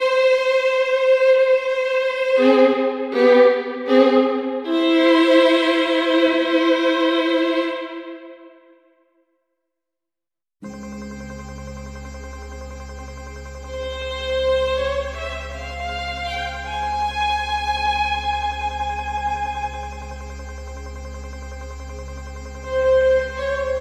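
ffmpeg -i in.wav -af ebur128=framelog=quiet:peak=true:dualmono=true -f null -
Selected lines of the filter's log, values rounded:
Integrated loudness:
  I:         -15.7 LUFS
  Threshold: -27.4 LUFS
Loudness range:
  LRA:        19.7 LU
  Threshold: -37.9 LUFS
  LRA low:   -32.8 LUFS
  LRA high:  -13.1 LUFS
True peak:
  Peak:       -3.2 dBFS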